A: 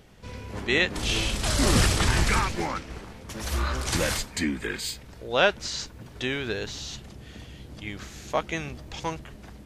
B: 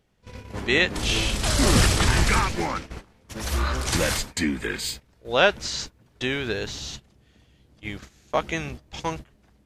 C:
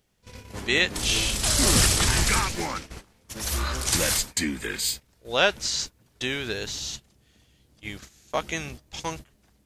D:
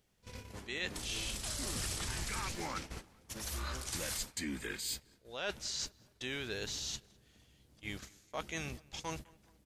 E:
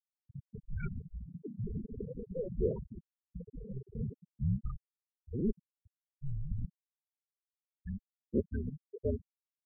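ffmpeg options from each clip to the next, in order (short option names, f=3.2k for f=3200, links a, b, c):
-af "agate=range=-17dB:threshold=-37dB:ratio=16:detection=peak,volume=2.5dB"
-af "highshelf=f=4.3k:g=12,volume=-4dB"
-filter_complex "[0:a]areverse,acompressor=threshold=-32dB:ratio=6,areverse,asplit=2[a][b];[b]adelay=207,lowpass=f=2.3k:p=1,volume=-23.5dB,asplit=2[c][d];[d]adelay=207,lowpass=f=2.3k:p=1,volume=0.48,asplit=2[e][f];[f]adelay=207,lowpass=f=2.3k:p=1,volume=0.48[g];[a][c][e][g]amix=inputs=4:normalize=0,volume=-4.5dB"
-af "highpass=f=180:t=q:w=0.5412,highpass=f=180:t=q:w=1.307,lowpass=f=3.1k:t=q:w=0.5176,lowpass=f=3.1k:t=q:w=0.7071,lowpass=f=3.1k:t=q:w=1.932,afreqshift=-390,lowshelf=f=590:t=q:w=3:g=9,afftfilt=real='re*gte(hypot(re,im),0.0631)':imag='im*gte(hypot(re,im),0.0631)':win_size=1024:overlap=0.75"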